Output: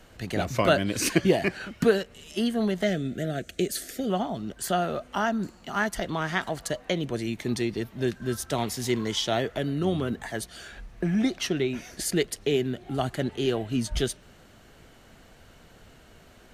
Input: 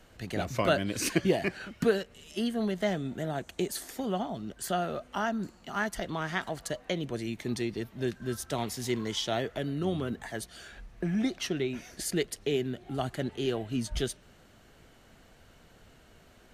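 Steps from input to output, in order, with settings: 2.83–4.1 Butterworth band-stop 950 Hz, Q 1.4; gain +4.5 dB

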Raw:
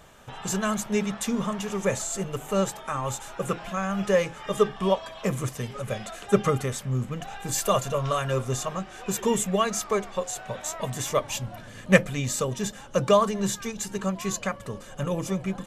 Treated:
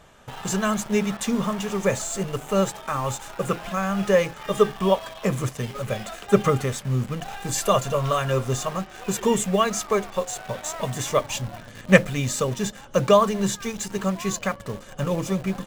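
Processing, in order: high shelf 11000 Hz -9 dB; in parallel at -7 dB: bit-crush 6-bit

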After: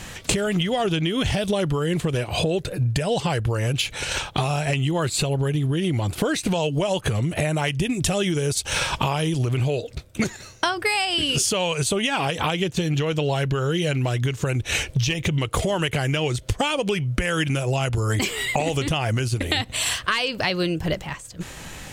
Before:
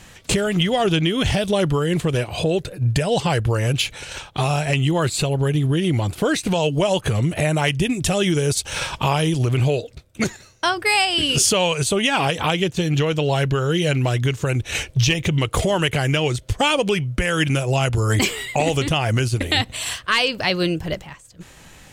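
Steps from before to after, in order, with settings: compressor 6:1, threshold -28 dBFS, peak gain reduction 13.5 dB; gain +7.5 dB

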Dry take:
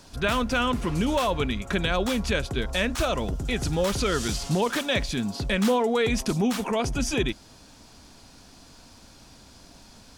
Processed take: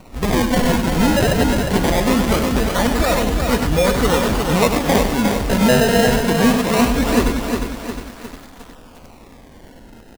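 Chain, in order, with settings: comb 4.1 ms, depth 45%; in parallel at -2 dB: vocal rider 0.5 s; on the sum: decimation with a swept rate 26×, swing 100% 0.22 Hz; echo 98 ms -7.5 dB; lo-fi delay 0.357 s, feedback 55%, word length 6-bit, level -5 dB; gain +1 dB

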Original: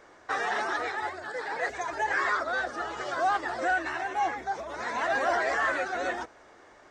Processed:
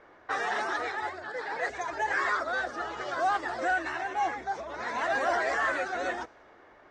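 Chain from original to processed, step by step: low-pass opened by the level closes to 2800 Hz, open at -24 dBFS; gain -1 dB

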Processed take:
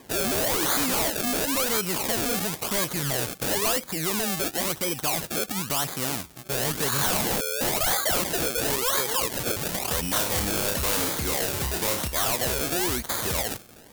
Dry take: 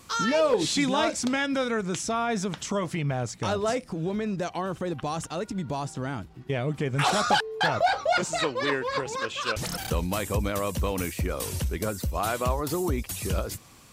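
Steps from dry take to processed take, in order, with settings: 6.61–7.34 spectral repair 980–2100 Hz both; decimation with a swept rate 31×, swing 100% 0.97 Hz; low shelf 170 Hz -9.5 dB; 10.01–12.08 flutter echo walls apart 5.1 m, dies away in 0.3 s; sine folder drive 12 dB, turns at -12.5 dBFS; pre-emphasis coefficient 0.8; mismatched tape noise reduction decoder only; gain +1.5 dB

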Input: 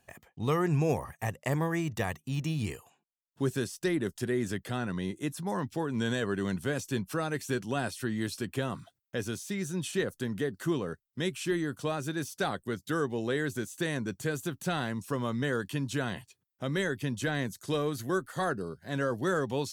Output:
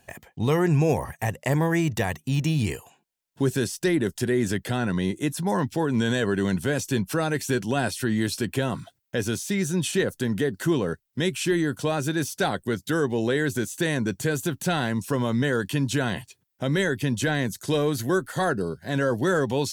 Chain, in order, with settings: notch 1200 Hz, Q 7.2; in parallel at +2 dB: limiter -25.5 dBFS, peak gain reduction 8.5 dB; on the sum: gain +2 dB

